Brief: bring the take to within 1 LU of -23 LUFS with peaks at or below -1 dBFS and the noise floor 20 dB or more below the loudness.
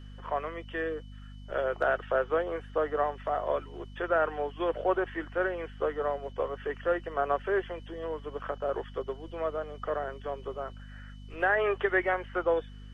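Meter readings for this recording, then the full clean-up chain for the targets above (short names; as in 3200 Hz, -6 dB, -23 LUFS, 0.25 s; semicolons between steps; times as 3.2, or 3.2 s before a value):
hum 50 Hz; harmonics up to 250 Hz; hum level -43 dBFS; steady tone 3000 Hz; tone level -61 dBFS; loudness -31.5 LUFS; peak -14.0 dBFS; loudness target -23.0 LUFS
-> de-hum 50 Hz, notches 5; notch 3000 Hz, Q 30; gain +8.5 dB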